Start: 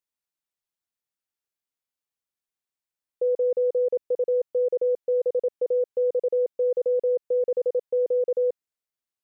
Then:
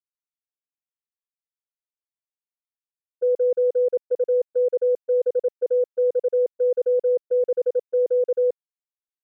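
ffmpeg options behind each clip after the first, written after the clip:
ffmpeg -i in.wav -af "agate=range=-24dB:threshold=-25dB:ratio=16:detection=peak,volume=3dB" out.wav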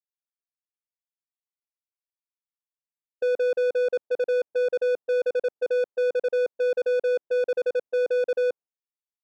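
ffmpeg -i in.wav -filter_complex "[0:a]adynamicsmooth=sensitivity=5.5:basefreq=720,agate=range=-33dB:threshold=-40dB:ratio=3:detection=peak,asplit=2[link_01][link_02];[link_02]highpass=frequency=720:poles=1,volume=23dB,asoftclip=type=tanh:threshold=-16dB[link_03];[link_01][link_03]amix=inputs=2:normalize=0,lowpass=frequency=1100:poles=1,volume=-6dB,volume=-2.5dB" out.wav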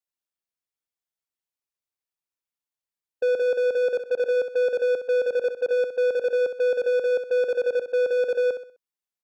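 ffmpeg -i in.wav -af "aecho=1:1:64|128|192|256:0.335|0.124|0.0459|0.017,volume=1.5dB" out.wav

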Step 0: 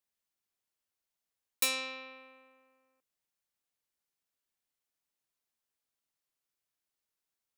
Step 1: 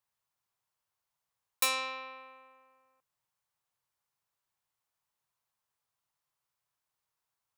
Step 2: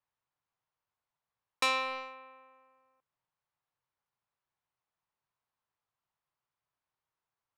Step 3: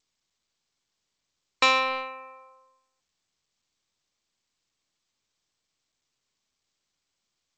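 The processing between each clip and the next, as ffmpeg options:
ffmpeg -i in.wav -af "equalizer=frequency=125:width_type=o:width=1:gain=11,equalizer=frequency=250:width_type=o:width=1:gain=-7,equalizer=frequency=1000:width_type=o:width=1:gain=10" out.wav
ffmpeg -i in.wav -filter_complex "[0:a]asplit=2[link_01][link_02];[link_02]acrusher=bits=5:mix=0:aa=0.5,volume=-3.5dB[link_03];[link_01][link_03]amix=inputs=2:normalize=0,adynamicsmooth=sensitivity=0.5:basefreq=3500" out.wav
ffmpeg -i in.wav -af "afftdn=noise_reduction=17:noise_floor=-53,volume=8.5dB" -ar 16000 -c:a g722 out.g722

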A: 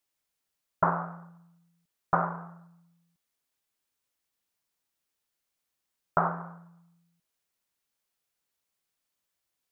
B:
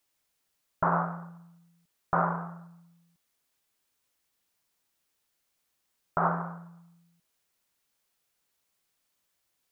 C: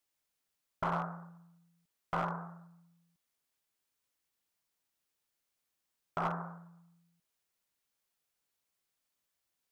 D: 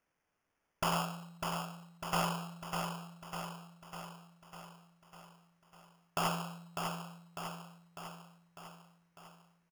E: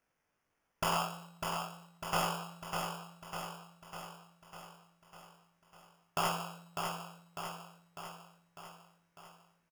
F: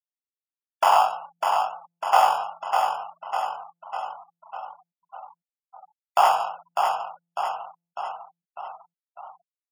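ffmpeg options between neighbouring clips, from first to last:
ffmpeg -i in.wav -af "alimiter=limit=-20dB:level=0:latency=1:release=68,volume=5.5dB" out.wav
ffmpeg -i in.wav -af "aeval=exprs='clip(val(0),-1,0.0794)':channel_layout=same,volume=-7dB" out.wav
ffmpeg -i in.wav -filter_complex "[0:a]acrusher=samples=11:mix=1:aa=0.000001,asplit=2[link_01][link_02];[link_02]aecho=0:1:600|1200|1800|2400|3000|3600|4200|4800:0.562|0.332|0.196|0.115|0.0681|0.0402|0.0237|0.014[link_03];[link_01][link_03]amix=inputs=2:normalize=0,volume=1dB" out.wav
ffmpeg -i in.wav -filter_complex "[0:a]asplit=2[link_01][link_02];[link_02]adelay=20,volume=-5dB[link_03];[link_01][link_03]amix=inputs=2:normalize=0" out.wav
ffmpeg -i in.wav -af "afftfilt=real='re*gte(hypot(re,im),0.00398)':imag='im*gte(hypot(re,im),0.00398)':win_size=1024:overlap=0.75,highpass=frequency=780:width_type=q:width=4.9,highshelf=frequency=4400:gain=-5.5,volume=8dB" out.wav

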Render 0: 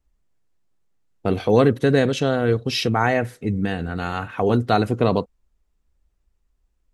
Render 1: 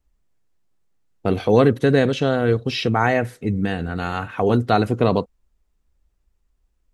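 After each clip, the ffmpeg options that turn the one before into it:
ffmpeg -i in.wav -filter_complex "[0:a]acrossover=split=4500[link_01][link_02];[link_02]acompressor=threshold=-42dB:ratio=4:attack=1:release=60[link_03];[link_01][link_03]amix=inputs=2:normalize=0,volume=1dB" out.wav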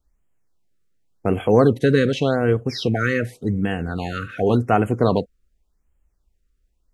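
ffmpeg -i in.wav -af "afftfilt=real='re*(1-between(b*sr/1024,780*pow(4800/780,0.5+0.5*sin(2*PI*0.88*pts/sr))/1.41,780*pow(4800/780,0.5+0.5*sin(2*PI*0.88*pts/sr))*1.41))':imag='im*(1-between(b*sr/1024,780*pow(4800/780,0.5+0.5*sin(2*PI*0.88*pts/sr))/1.41,780*pow(4800/780,0.5+0.5*sin(2*PI*0.88*pts/sr))*1.41))':win_size=1024:overlap=0.75" out.wav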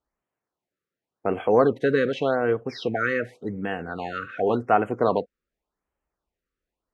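ffmpeg -i in.wav -af "bandpass=frequency=940:width_type=q:width=0.62:csg=0" out.wav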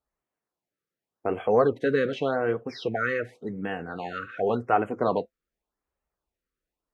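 ffmpeg -i in.wav -af "flanger=delay=1.5:depth=5.3:regen=-63:speed=0.66:shape=sinusoidal,volume=1.5dB" out.wav

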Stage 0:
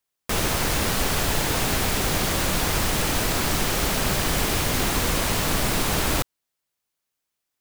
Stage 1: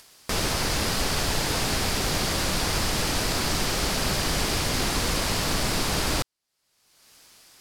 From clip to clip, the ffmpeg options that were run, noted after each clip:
ffmpeg -i in.wav -af "lowpass=12000,equalizer=frequency=4800:width_type=o:width=0.46:gain=6,acompressor=mode=upward:threshold=-26dB:ratio=2.5,volume=-2.5dB" out.wav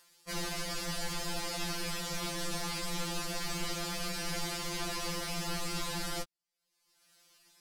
ffmpeg -i in.wav -af "afftfilt=real='re*2.83*eq(mod(b,8),0)':imag='im*2.83*eq(mod(b,8),0)':win_size=2048:overlap=0.75,volume=-8.5dB" out.wav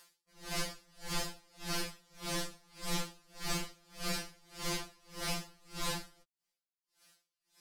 ffmpeg -i in.wav -af "aeval=exprs='val(0)*pow(10,-33*(0.5-0.5*cos(2*PI*1.7*n/s))/20)':channel_layout=same,volume=3dB" out.wav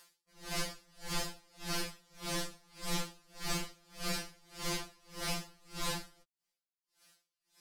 ffmpeg -i in.wav -af anull out.wav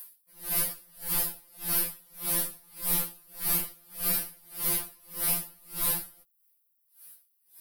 ffmpeg -i in.wav -af "aexciter=amount=14.5:drive=5.9:freq=9900" out.wav

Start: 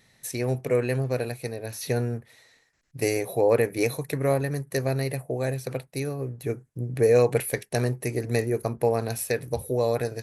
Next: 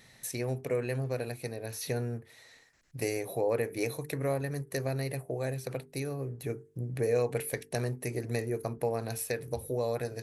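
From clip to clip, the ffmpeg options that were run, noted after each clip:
ffmpeg -i in.wav -af "bandreject=frequency=50:width_type=h:width=6,bandreject=frequency=100:width_type=h:width=6,bandreject=frequency=150:width_type=h:width=6,bandreject=frequency=200:width_type=h:width=6,bandreject=frequency=250:width_type=h:width=6,bandreject=frequency=300:width_type=h:width=6,bandreject=frequency=350:width_type=h:width=6,bandreject=frequency=400:width_type=h:width=6,bandreject=frequency=450:width_type=h:width=6,acompressor=threshold=-51dB:ratio=1.5,volume=3.5dB" out.wav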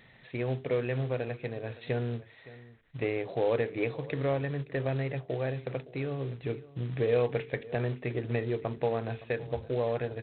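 ffmpeg -i in.wav -af "aecho=1:1:566:0.112,aresample=8000,acrusher=bits=5:mode=log:mix=0:aa=0.000001,aresample=44100,volume=1.5dB" out.wav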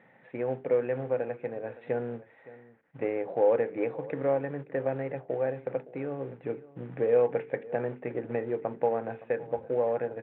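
ffmpeg -i in.wav -af "highpass=170,equalizer=frequency=190:width_type=q:width=4:gain=7,equalizer=frequency=290:width_type=q:width=4:gain=5,equalizer=frequency=520:width_type=q:width=4:gain=9,equalizer=frequency=830:width_type=q:width=4:gain=9,equalizer=frequency=1500:width_type=q:width=4:gain=4,lowpass=frequency=2300:width=0.5412,lowpass=frequency=2300:width=1.3066,volume=-3.5dB" out.wav

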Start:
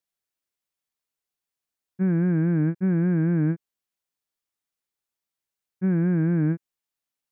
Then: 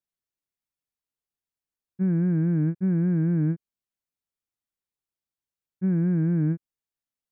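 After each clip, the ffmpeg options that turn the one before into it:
ffmpeg -i in.wav -af "lowshelf=frequency=320:gain=9.5,volume=-8dB" out.wav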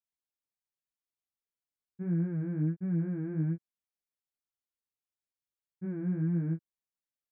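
ffmpeg -i in.wav -af "flanger=delay=17.5:depth=3.7:speed=1.4,volume=-5dB" out.wav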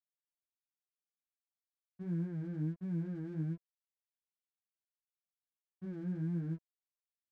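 ffmpeg -i in.wav -af "aeval=exprs='sgn(val(0))*max(abs(val(0))-0.00158,0)':channel_layout=same,volume=-6dB" out.wav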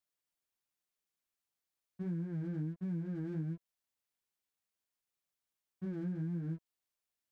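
ffmpeg -i in.wav -af "acompressor=threshold=-40dB:ratio=6,volume=5dB" out.wav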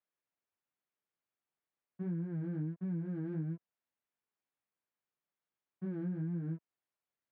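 ffmpeg -i in.wav -af "highpass=100,lowpass=2100,volume=1dB" out.wav

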